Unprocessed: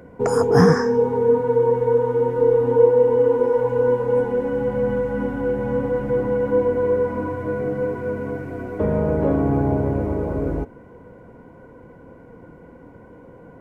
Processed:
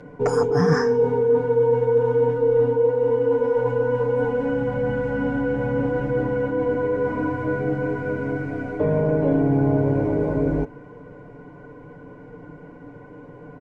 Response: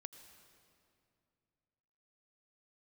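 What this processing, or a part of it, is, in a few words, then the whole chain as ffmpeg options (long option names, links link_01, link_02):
compression on the reversed sound: -af "areverse,acompressor=threshold=-18dB:ratio=10,areverse,lowpass=5700,highshelf=frequency=6300:gain=4.5,aecho=1:1:6.8:0.89"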